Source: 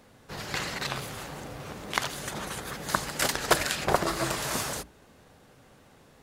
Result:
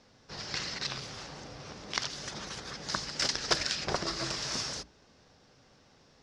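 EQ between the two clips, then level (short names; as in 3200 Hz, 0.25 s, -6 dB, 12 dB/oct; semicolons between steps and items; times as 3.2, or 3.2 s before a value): dynamic EQ 800 Hz, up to -4 dB, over -39 dBFS, Q 0.99; ladder low-pass 5900 Hz, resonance 65%; +5.0 dB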